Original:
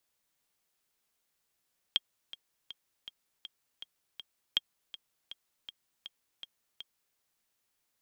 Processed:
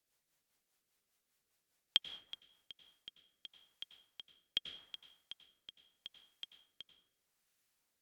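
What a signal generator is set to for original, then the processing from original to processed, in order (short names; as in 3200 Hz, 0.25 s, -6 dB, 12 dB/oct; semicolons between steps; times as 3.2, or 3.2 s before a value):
metronome 161 bpm, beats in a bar 7, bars 2, 3240 Hz, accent 17 dB -13 dBFS
plate-style reverb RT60 0.84 s, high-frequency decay 0.5×, pre-delay 80 ms, DRR 6.5 dB; rotary speaker horn 5 Hz, later 0.8 Hz, at 2.28; AAC 96 kbps 44100 Hz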